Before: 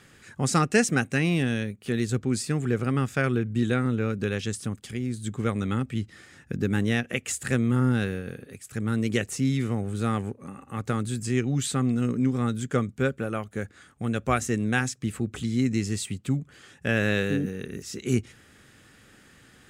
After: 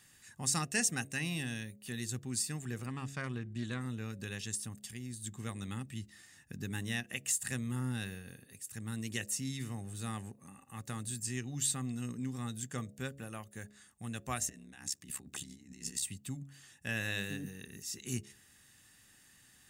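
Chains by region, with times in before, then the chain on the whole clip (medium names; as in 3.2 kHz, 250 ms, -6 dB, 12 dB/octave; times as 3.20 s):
2.86–3.81 s: distance through air 54 m + loudspeaker Doppler distortion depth 0.14 ms
14.49–16.03 s: high-pass 140 Hz 24 dB/octave + compressor with a negative ratio -35 dBFS + ring modulator 34 Hz
whole clip: pre-emphasis filter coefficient 0.8; comb 1.1 ms, depth 43%; de-hum 69.26 Hz, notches 10; trim -1 dB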